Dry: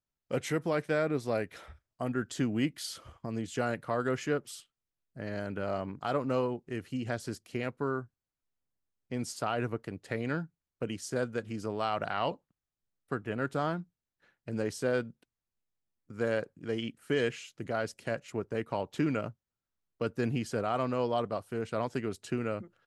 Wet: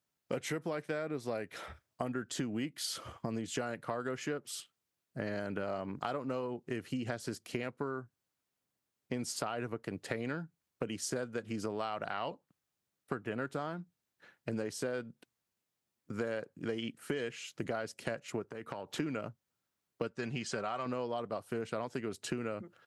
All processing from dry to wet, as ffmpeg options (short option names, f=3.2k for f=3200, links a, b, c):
-filter_complex "[0:a]asettb=1/sr,asplit=3[a][b][c];[a]atrim=end=18.424[d];[b]atrim=start=18.42:end=19,asetpts=PTS-STARTPTS,afade=t=in:d=0.004:c=qsin,afade=t=out:st=0.576:d=0.004:c=qsin,acompressor=threshold=-43dB:ratio=10:attack=3.2:release=140:knee=1:detection=peak,equalizer=f=1.4k:w=2.2:g=3.5[e];[c]atrim=start=18.996[f];[d][e]acrossfade=d=0.004:c1=hsin:c2=qsin[g];[g][f]acrossfade=d=0.004:c1=qsin:c2=hsin,asettb=1/sr,asplit=3[h][i][j];[h]atrim=end=20.074[k];[i]atrim=start=20.07:end=20.86,asetpts=PTS-STARTPTS,afade=t=in:d=0.004:c=qsin,afade=t=out:st=0.786:d=0.004:c=qsin,lowpass=f=7.8k:w=0.5412,lowpass=f=7.8k:w=1.3066,equalizer=f=270:t=o:w=2.8:g=-7.5,aecho=1:1:5.2:0.32,atrim=end_sample=34839[l];[j]atrim=start=20.856[m];[k][l]acrossfade=d=0.004:c1=hsin:c2=qsin[n];[n][m]acrossfade=d=0.004:c1=qsin:c2=hsin,highpass=99,lowshelf=f=170:g=-3,acompressor=threshold=-40dB:ratio=10,volume=7dB"